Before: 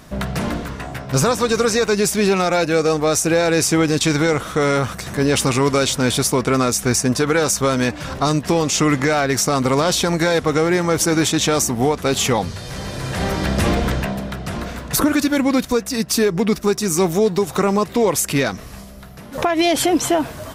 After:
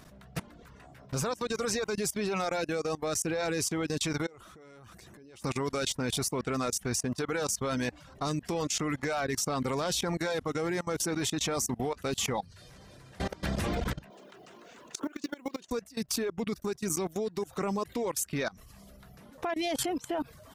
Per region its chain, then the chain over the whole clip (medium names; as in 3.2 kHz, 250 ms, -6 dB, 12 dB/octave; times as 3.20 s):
4.26–5.44 s: peaking EQ 350 Hz +8 dB 0.37 oct + compression 12:1, threshold -23 dBFS
14.10–15.71 s: cabinet simulation 290–8000 Hz, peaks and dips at 380 Hz +8 dB, 1 kHz +3 dB, 2.9 kHz +5 dB, 6.7 kHz +5 dB + companded quantiser 6-bit + compression, threshold -18 dBFS
whole clip: reverb removal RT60 0.54 s; level held to a coarse grid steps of 22 dB; trim -8.5 dB